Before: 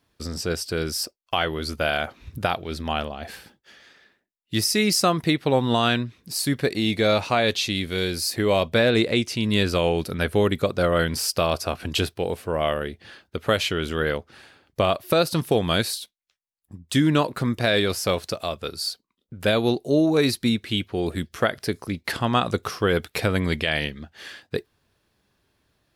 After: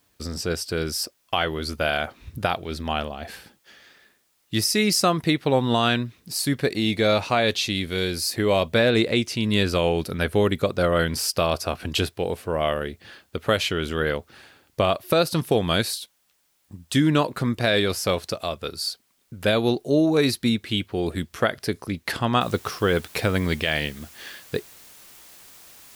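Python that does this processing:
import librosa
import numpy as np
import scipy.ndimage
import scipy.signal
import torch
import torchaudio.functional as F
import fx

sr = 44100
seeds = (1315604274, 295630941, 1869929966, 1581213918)

y = fx.noise_floor_step(x, sr, seeds[0], at_s=22.41, before_db=-68, after_db=-48, tilt_db=0.0)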